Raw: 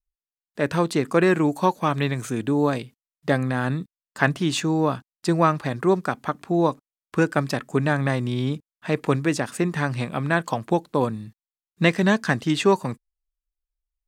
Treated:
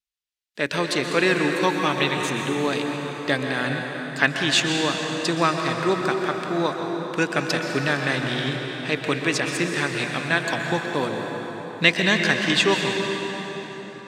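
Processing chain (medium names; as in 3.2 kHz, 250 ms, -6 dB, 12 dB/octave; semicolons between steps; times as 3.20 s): frequency weighting D; on a send: reverberation RT60 4.8 s, pre-delay 113 ms, DRR 2 dB; on the sum: trim -3 dB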